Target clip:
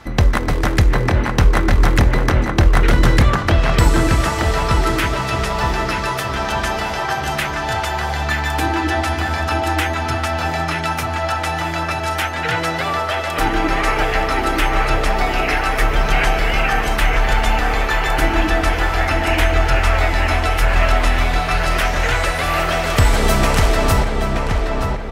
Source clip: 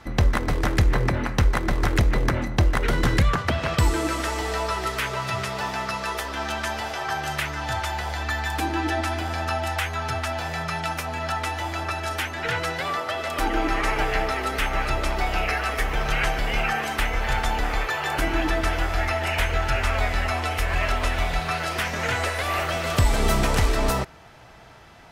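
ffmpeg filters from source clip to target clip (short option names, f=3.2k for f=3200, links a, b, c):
-filter_complex "[0:a]asplit=2[a][b];[b]adelay=925,lowpass=f=2.6k:p=1,volume=-3.5dB,asplit=2[c][d];[d]adelay=925,lowpass=f=2.6k:p=1,volume=0.48,asplit=2[e][f];[f]adelay=925,lowpass=f=2.6k:p=1,volume=0.48,asplit=2[g][h];[h]adelay=925,lowpass=f=2.6k:p=1,volume=0.48,asplit=2[i][j];[j]adelay=925,lowpass=f=2.6k:p=1,volume=0.48,asplit=2[k][l];[l]adelay=925,lowpass=f=2.6k:p=1,volume=0.48[m];[a][c][e][g][i][k][m]amix=inputs=7:normalize=0,volume=5.5dB"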